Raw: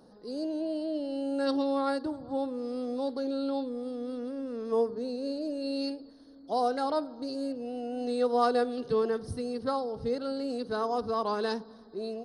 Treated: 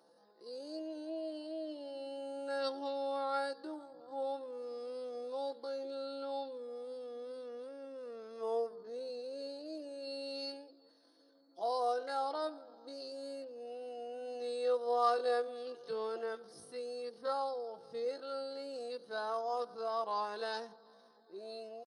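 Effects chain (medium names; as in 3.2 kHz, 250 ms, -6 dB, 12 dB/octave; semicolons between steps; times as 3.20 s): high-pass 470 Hz 12 dB/octave; comb 5.9 ms, depth 46%; tempo 0.56×; trim -6 dB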